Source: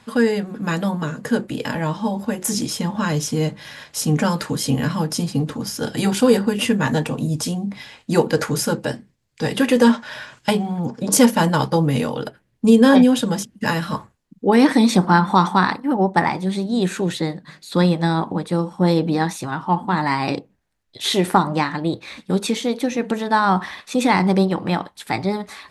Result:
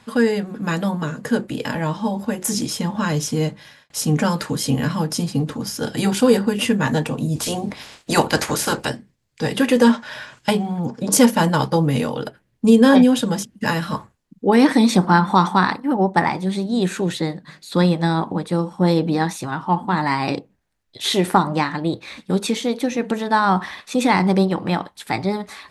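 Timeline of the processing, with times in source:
0:03.43–0:03.90: fade out
0:07.35–0:08.88: ceiling on every frequency bin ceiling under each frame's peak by 18 dB

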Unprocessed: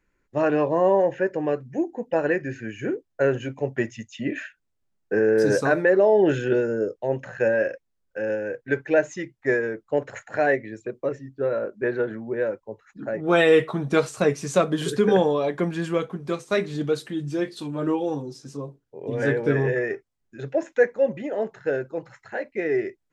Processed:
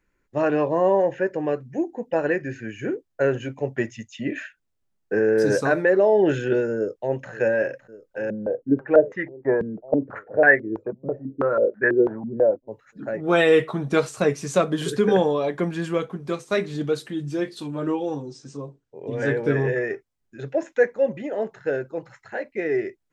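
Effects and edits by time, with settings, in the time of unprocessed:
0:06.76–0:07.31: delay throw 560 ms, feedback 80%, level −17 dB
0:08.30–0:12.68: low-pass on a step sequencer 6.1 Hz 200–1,700 Hz
0:17.79–0:19.31: Chebyshev low-pass filter 8,500 Hz, order 6

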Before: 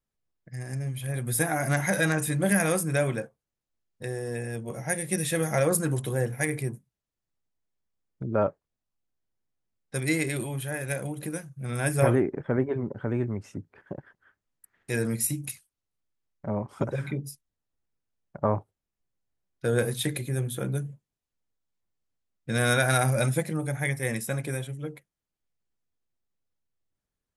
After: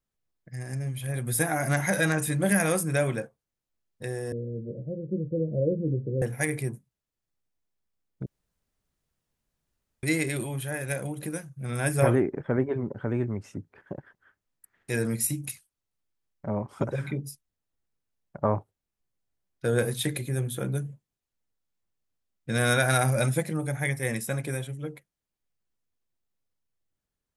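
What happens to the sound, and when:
0:04.32–0:06.22: Butterworth low-pass 550 Hz 72 dB per octave
0:08.26–0:10.03: fill with room tone

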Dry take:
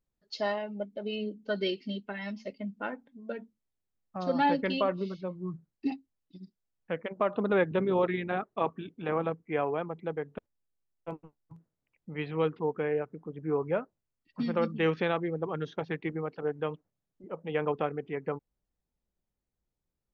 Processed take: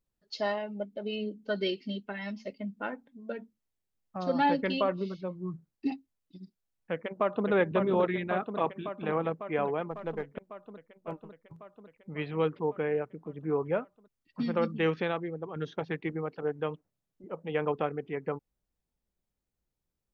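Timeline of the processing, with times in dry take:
0:06.92–0:07.47: delay throw 550 ms, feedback 75%, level −5 dB
0:09.91–0:10.31: gain on one half-wave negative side −3 dB
0:14.77–0:15.56: fade out, to −7 dB

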